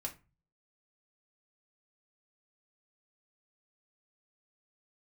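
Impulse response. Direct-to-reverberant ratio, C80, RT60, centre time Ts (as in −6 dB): 0.5 dB, 22.0 dB, 0.30 s, 10 ms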